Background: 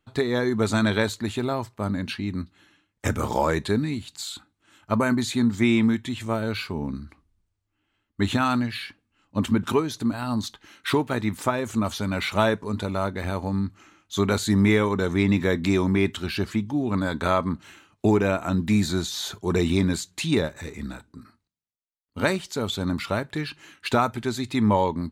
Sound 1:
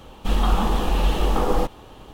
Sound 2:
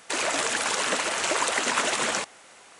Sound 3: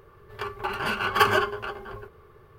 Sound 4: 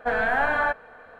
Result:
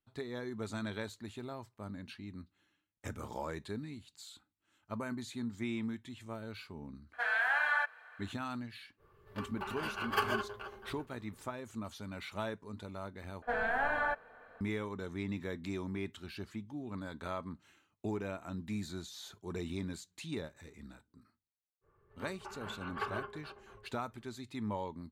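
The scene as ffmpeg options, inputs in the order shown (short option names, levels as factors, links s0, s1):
-filter_complex "[4:a]asplit=2[s0][s1];[3:a]asplit=2[s2][s3];[0:a]volume=0.133[s4];[s0]highpass=1500[s5];[s3]lowpass=2100[s6];[s4]asplit=2[s7][s8];[s7]atrim=end=13.424[s9];[s1]atrim=end=1.19,asetpts=PTS-STARTPTS,volume=0.335[s10];[s8]atrim=start=14.606[s11];[s5]atrim=end=1.19,asetpts=PTS-STARTPTS,volume=0.75,afade=t=in:d=0.004:c=hsin,afade=t=out:st=1.186:d=0.004:c=hsin,adelay=7130[s12];[s2]atrim=end=2.58,asetpts=PTS-STARTPTS,volume=0.251,afade=t=in:d=0.05,afade=t=out:st=2.53:d=0.05,adelay=8970[s13];[s6]atrim=end=2.58,asetpts=PTS-STARTPTS,volume=0.133,afade=t=in:d=0.05,afade=t=out:st=2.53:d=0.05,adelay=21810[s14];[s9][s10]acrossfade=d=0.004:c1=hsin:c2=hsin[s15];[s15][s11]acrossfade=d=0.004:c1=hsin:c2=hsin[s16];[s16][s12][s13][s14]amix=inputs=4:normalize=0"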